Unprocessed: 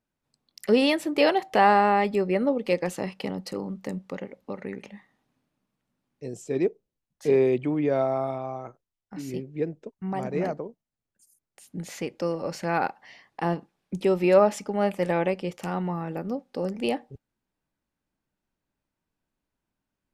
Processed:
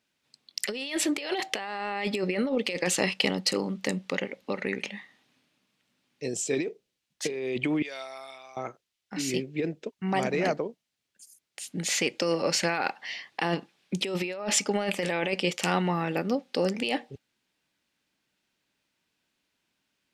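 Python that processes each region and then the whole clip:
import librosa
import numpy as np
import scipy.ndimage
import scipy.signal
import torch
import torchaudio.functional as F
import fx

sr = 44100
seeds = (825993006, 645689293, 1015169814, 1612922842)

y = fx.chain(x, sr, fx.differentiator(),
    fx.notch(hz=6500.0, q=12.0), at=(7.82, 8.57))
y = fx.weighting(y, sr, curve='D')
y = fx.over_compress(y, sr, threshold_db=-28.0, ratio=-1.0)
y = fx.dynamic_eq(y, sr, hz=7800.0, q=1.9, threshold_db=-48.0, ratio=4.0, max_db=5)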